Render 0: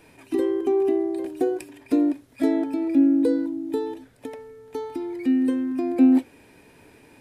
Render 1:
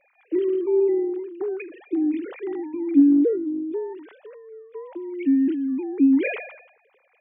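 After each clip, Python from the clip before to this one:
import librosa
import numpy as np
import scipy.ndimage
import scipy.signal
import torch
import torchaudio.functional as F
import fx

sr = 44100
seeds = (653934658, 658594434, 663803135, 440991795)

y = fx.sine_speech(x, sr)
y = fx.spec_box(y, sr, start_s=3.36, length_s=0.38, low_hz=720.0, high_hz=2300.0, gain_db=-14)
y = fx.sustainer(y, sr, db_per_s=75.0)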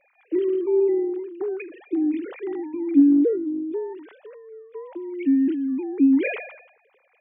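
y = x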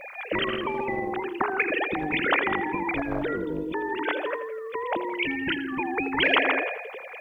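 y = fx.echo_feedback(x, sr, ms=83, feedback_pct=50, wet_db=-15)
y = fx.spectral_comp(y, sr, ratio=10.0)
y = F.gain(torch.from_numpy(y), -2.0).numpy()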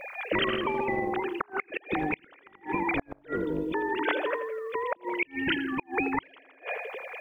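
y = fx.gate_flip(x, sr, shuts_db=-15.0, range_db=-33)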